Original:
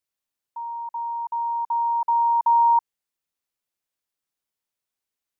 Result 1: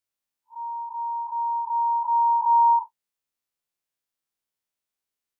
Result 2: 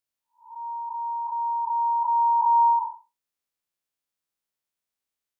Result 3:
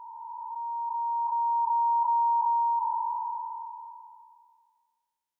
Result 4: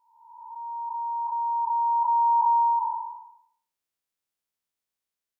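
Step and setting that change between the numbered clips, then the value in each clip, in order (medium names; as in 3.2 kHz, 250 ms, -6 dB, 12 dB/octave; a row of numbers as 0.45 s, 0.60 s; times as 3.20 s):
spectral blur, width: 89 ms, 233 ms, 1650 ms, 593 ms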